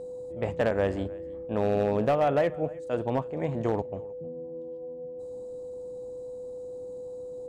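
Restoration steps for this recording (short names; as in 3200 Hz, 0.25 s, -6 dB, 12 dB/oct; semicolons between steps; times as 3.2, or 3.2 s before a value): clip repair -18 dBFS; notch 500 Hz, Q 30; inverse comb 0.312 s -22.5 dB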